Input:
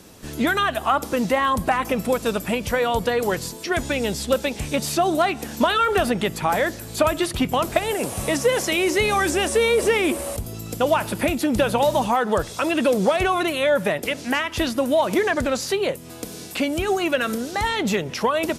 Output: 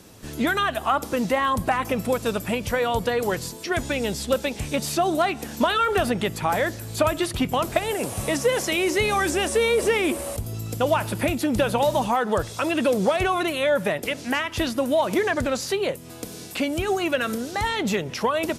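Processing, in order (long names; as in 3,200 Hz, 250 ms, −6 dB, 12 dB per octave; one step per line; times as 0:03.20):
parametric band 110 Hz +7 dB 0.22 octaves
level −2 dB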